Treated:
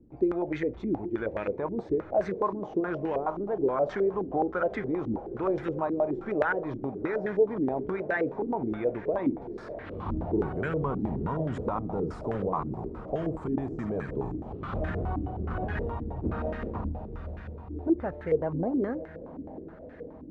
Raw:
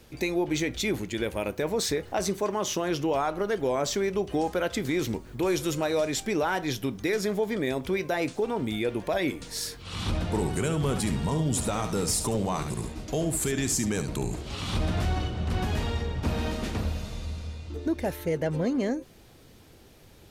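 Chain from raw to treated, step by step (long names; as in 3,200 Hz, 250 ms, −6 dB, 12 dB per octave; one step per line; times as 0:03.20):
feedback delay with all-pass diffusion 653 ms, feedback 70%, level −15 dB
low-pass on a step sequencer 9.5 Hz 290–1,700 Hz
level −5.5 dB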